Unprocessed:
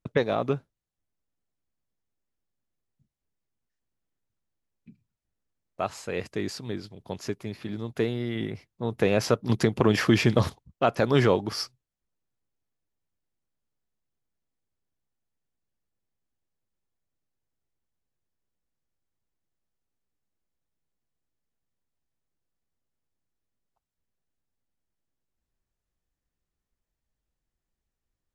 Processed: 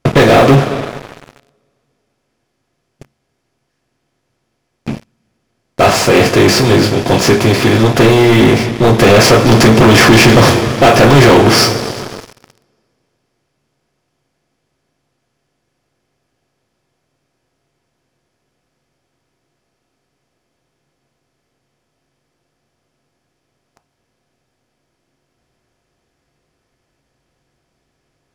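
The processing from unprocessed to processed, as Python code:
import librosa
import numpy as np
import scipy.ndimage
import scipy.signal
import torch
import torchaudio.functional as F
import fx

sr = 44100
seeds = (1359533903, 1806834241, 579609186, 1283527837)

y = fx.bin_compress(x, sr, power=0.6)
y = fx.rev_double_slope(y, sr, seeds[0], early_s=0.24, late_s=3.1, knee_db=-21, drr_db=0.0)
y = fx.leveller(y, sr, passes=5)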